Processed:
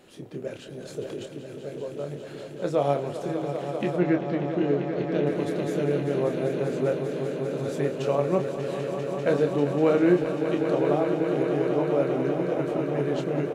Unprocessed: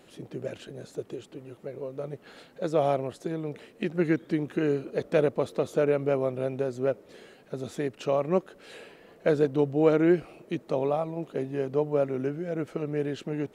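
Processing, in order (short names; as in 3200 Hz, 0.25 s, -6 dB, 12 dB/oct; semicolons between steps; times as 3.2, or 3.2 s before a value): 4.45–6.18 spectral gain 450–2700 Hz -8 dB; swelling echo 0.197 s, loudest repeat 5, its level -10 dB; 0.72–1.27 transient shaper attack 0 dB, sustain +7 dB; 3.97–5.27 air absorption 130 m; doubler 28 ms -6.5 dB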